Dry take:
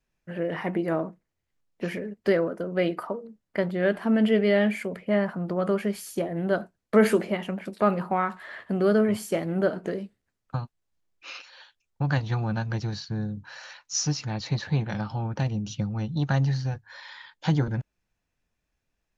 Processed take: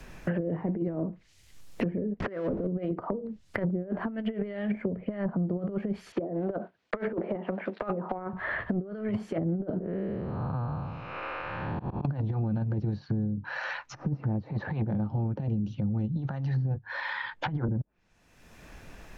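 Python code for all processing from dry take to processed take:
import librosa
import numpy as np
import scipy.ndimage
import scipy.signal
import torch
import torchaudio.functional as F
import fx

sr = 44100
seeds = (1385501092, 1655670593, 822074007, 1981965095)

y = fx.chain(x, sr, fx.zero_step(step_db=-29.5),
    fx.high_shelf(hz=11000.0, db=-12.0), at=(2.2, 2.67))
y = fx.chain(y, sr, fx.block_float(bits=5),
    fx.bandpass_edges(low_hz=370.0, high_hz=2900.0), at=(6.12, 8.33))
y = fx.chain(y, sr, fx.spec_blur(span_ms=466.0),
    fx.auto_swell(attack_ms=155.0),
    fx.lowpass(hz=1200.0, slope=12), at=(9.8, 12.05))
y = fx.over_compress(y, sr, threshold_db=-28.0, ratio=-0.5)
y = fx.env_lowpass_down(y, sr, base_hz=450.0, full_db=-26.0)
y = fx.band_squash(y, sr, depth_pct=100)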